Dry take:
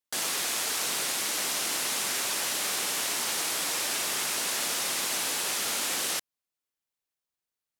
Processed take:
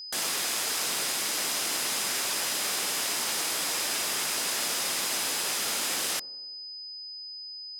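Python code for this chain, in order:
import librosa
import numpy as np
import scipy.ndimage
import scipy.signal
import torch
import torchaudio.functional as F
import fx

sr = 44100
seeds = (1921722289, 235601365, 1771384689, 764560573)

p1 = x + 10.0 ** (-38.0 / 20.0) * np.sin(2.0 * np.pi * 5000.0 * np.arange(len(x)) / sr)
y = p1 + fx.echo_wet_lowpass(p1, sr, ms=94, feedback_pct=64, hz=580.0, wet_db=-17.5, dry=0)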